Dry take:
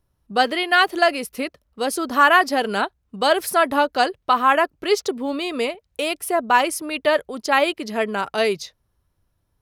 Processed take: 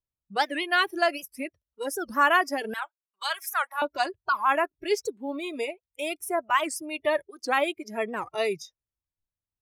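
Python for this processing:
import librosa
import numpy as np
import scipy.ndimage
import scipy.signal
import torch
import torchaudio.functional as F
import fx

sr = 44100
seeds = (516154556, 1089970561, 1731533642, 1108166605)

y = fx.noise_reduce_blind(x, sr, reduce_db=20)
y = fx.highpass(y, sr, hz=1000.0, slope=24, at=(2.74, 3.82))
y = fx.record_warp(y, sr, rpm=78.0, depth_cents=250.0)
y = y * 10.0 ** (-6.5 / 20.0)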